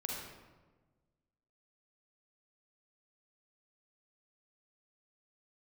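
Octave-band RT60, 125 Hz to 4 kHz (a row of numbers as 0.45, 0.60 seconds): 1.8, 1.6, 1.4, 1.2, 1.0, 0.75 seconds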